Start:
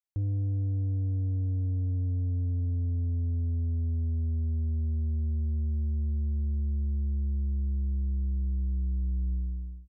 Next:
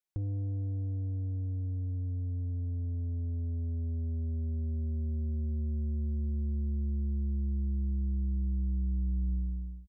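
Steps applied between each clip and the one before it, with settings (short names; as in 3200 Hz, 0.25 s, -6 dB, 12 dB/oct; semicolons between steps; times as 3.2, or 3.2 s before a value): comb 5.5 ms, depth 45%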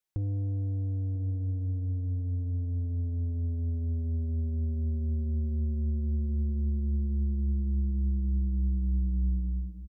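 outdoor echo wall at 170 m, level -16 dB; gain +3 dB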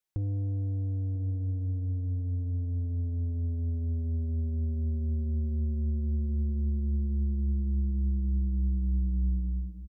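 nothing audible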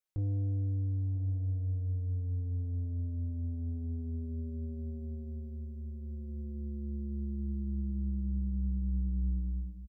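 doubler 20 ms -5 dB; gain -5 dB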